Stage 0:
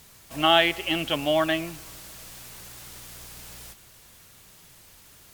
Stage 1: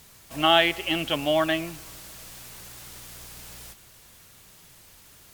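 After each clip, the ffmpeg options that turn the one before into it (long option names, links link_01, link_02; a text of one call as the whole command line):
ffmpeg -i in.wav -af anull out.wav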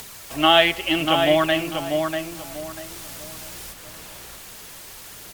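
ffmpeg -i in.wav -filter_complex "[0:a]aphaser=in_gain=1:out_gain=1:delay=4.9:decay=0.3:speed=0.76:type=triangular,asplit=2[link_01][link_02];[link_02]adelay=642,lowpass=frequency=2000:poles=1,volume=-4.5dB,asplit=2[link_03][link_04];[link_04]adelay=642,lowpass=frequency=2000:poles=1,volume=0.28,asplit=2[link_05][link_06];[link_06]adelay=642,lowpass=frequency=2000:poles=1,volume=0.28,asplit=2[link_07][link_08];[link_08]adelay=642,lowpass=frequency=2000:poles=1,volume=0.28[link_09];[link_01][link_03][link_05][link_07][link_09]amix=inputs=5:normalize=0,acrossover=split=270[link_10][link_11];[link_11]acompressor=mode=upward:threshold=-35dB:ratio=2.5[link_12];[link_10][link_12]amix=inputs=2:normalize=0,volume=3.5dB" out.wav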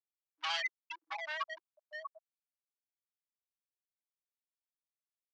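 ffmpeg -i in.wav -af "afftfilt=real='re*gte(hypot(re,im),0.631)':imag='im*gte(hypot(re,im),0.631)':win_size=1024:overlap=0.75,volume=24dB,asoftclip=hard,volume=-24dB,asuperpass=centerf=2400:order=8:qfactor=0.52,volume=-4.5dB" out.wav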